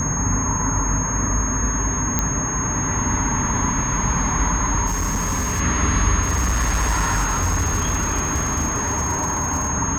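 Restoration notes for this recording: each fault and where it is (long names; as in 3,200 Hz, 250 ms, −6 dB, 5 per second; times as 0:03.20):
whistle 6,500 Hz −24 dBFS
0:02.19: click −5 dBFS
0:04.86–0:05.61: clipping −18.5 dBFS
0:06.22–0:09.70: clipping −16 dBFS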